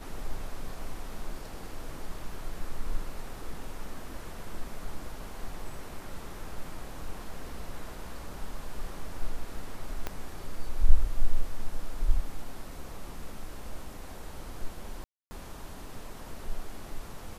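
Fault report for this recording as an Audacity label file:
10.070000	10.070000	click −17 dBFS
15.040000	15.310000	drop-out 270 ms

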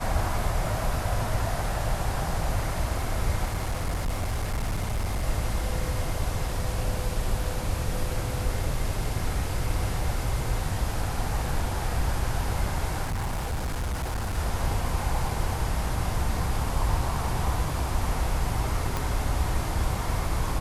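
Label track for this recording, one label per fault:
3.470000	5.250000	clipping −23.5 dBFS
13.030000	14.380000	clipping −25.5 dBFS
18.970000	18.970000	click

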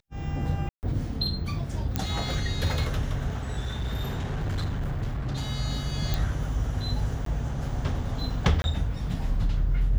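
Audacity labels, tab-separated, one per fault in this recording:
0.690000	0.830000	drop-out 139 ms
1.960000	1.960000	click −11 dBFS
3.600000	5.490000	clipping −25 dBFS
6.140000	6.140000	click
7.250000	7.260000	drop-out 13 ms
8.620000	8.640000	drop-out 21 ms

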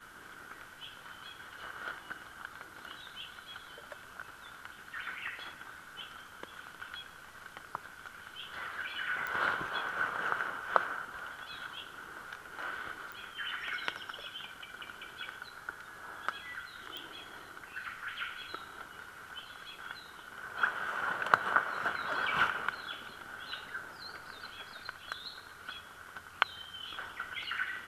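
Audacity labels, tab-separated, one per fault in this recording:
9.270000	9.270000	click −22 dBFS
13.120000	13.120000	click
16.970000	16.970000	click

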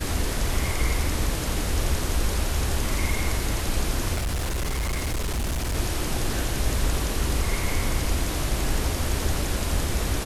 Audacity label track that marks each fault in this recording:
4.140000	5.760000	clipping −23 dBFS

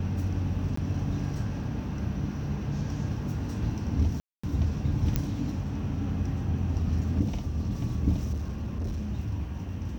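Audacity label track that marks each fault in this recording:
0.760000	0.770000	drop-out 14 ms
4.200000	4.430000	drop-out 235 ms
5.160000	5.160000	click −12 dBFS
8.320000	9.070000	clipping −28 dBFS

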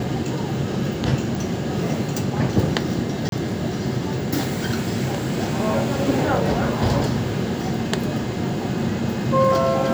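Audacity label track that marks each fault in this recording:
3.290000	3.320000	drop-out 32 ms

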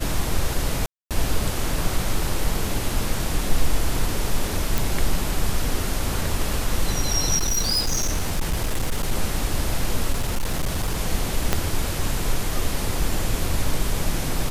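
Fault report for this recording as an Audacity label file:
0.860000	1.110000	drop-out 247 ms
4.780000	4.780000	click
7.370000	9.120000	clipping −18 dBFS
10.120000	10.970000	clipping −18.5 dBFS
11.530000	11.530000	click −4 dBFS

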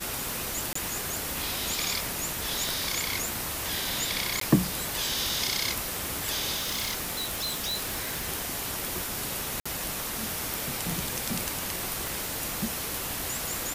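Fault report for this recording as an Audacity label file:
0.730000	0.750000	drop-out 24 ms
2.690000	2.690000	click
4.400000	4.410000	drop-out 13 ms
6.560000	8.270000	clipping −26.5 dBFS
9.600000	9.650000	drop-out 55 ms
12.070000	12.070000	click

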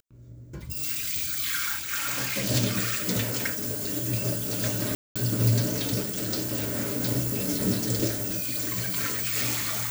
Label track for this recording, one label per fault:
4.950000	5.160000	drop-out 206 ms

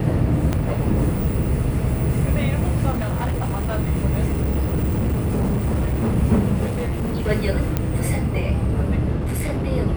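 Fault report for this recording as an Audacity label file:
0.530000	0.530000	click −8 dBFS
2.900000	3.790000	clipping −19.5 dBFS
4.290000	6.170000	clipping −16.5 dBFS
6.650000	7.290000	clipping −20 dBFS
7.770000	7.770000	click −7 dBFS
9.180000	9.670000	clipping −20 dBFS

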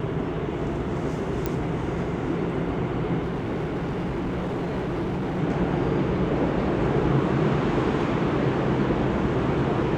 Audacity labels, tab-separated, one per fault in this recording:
1.460000	1.460000	click −12 dBFS
3.210000	5.400000	clipping −24 dBFS

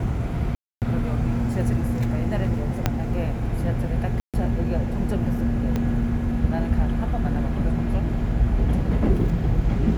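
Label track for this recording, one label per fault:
0.550000	0.820000	drop-out 268 ms
2.860000	2.860000	click −6 dBFS
4.200000	4.340000	drop-out 137 ms
5.760000	5.760000	click −13 dBFS

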